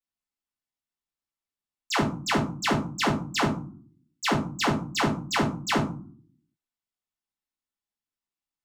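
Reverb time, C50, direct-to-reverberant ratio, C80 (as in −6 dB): 0.50 s, 9.5 dB, −5.5 dB, 15.0 dB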